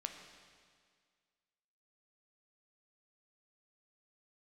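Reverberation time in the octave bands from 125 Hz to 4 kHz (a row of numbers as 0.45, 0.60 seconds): 1.9, 1.9, 1.9, 1.9, 1.9, 1.9 seconds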